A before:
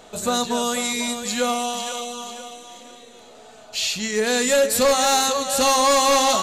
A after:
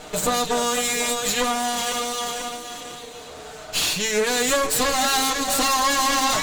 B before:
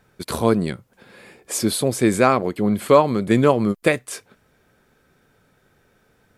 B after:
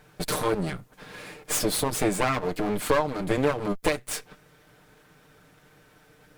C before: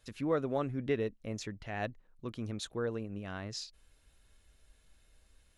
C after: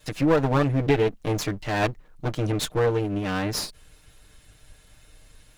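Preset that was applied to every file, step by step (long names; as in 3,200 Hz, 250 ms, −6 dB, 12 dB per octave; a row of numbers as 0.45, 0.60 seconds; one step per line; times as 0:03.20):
lower of the sound and its delayed copy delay 6.6 ms
downward compressor 2.5 to 1, threshold −31 dBFS
normalise the peak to −9 dBFS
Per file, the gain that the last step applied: +9.0, +5.5, +14.5 decibels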